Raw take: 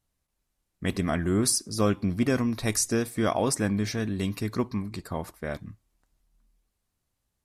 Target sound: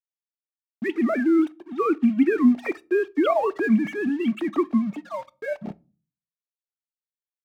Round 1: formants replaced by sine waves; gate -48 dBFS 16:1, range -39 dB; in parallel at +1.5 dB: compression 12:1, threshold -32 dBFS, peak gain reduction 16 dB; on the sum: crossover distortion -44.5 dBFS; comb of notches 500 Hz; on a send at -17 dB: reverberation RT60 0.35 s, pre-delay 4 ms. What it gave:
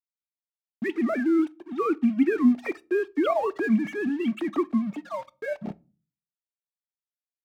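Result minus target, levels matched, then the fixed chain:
compression: peak gain reduction +8.5 dB
formants replaced by sine waves; gate -48 dBFS 16:1, range -39 dB; in parallel at +1.5 dB: compression 12:1, threshold -23 dBFS, peak gain reduction 8 dB; on the sum: crossover distortion -44.5 dBFS; comb of notches 500 Hz; on a send at -17 dB: reverberation RT60 0.35 s, pre-delay 4 ms

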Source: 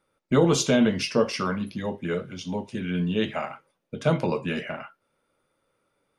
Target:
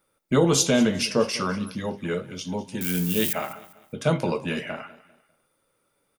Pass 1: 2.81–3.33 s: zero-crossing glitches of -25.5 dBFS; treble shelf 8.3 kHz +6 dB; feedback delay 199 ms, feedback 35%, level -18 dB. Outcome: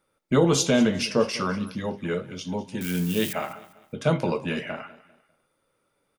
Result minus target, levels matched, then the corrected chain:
8 kHz band -3.0 dB
2.81–3.33 s: zero-crossing glitches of -25.5 dBFS; treble shelf 8.3 kHz +15.5 dB; feedback delay 199 ms, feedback 35%, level -18 dB

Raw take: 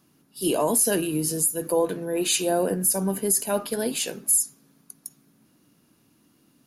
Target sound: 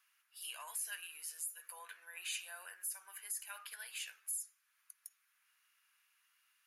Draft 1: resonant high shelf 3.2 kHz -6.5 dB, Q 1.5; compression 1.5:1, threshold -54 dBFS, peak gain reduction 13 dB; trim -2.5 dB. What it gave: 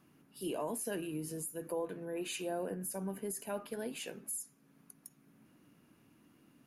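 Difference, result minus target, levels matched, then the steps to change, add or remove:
1 kHz band +5.0 dB
add first: high-pass 1.4 kHz 24 dB/octave

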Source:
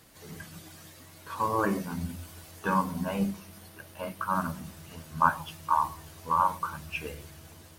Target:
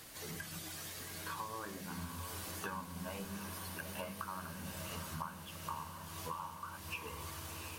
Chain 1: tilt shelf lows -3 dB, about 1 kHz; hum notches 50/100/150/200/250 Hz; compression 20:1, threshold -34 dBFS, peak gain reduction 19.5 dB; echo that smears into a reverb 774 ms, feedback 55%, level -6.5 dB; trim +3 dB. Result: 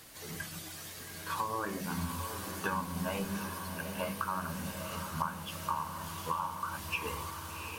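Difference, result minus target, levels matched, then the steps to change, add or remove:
compression: peak gain reduction -9 dB
change: compression 20:1, threshold -43.5 dBFS, peak gain reduction 28.5 dB

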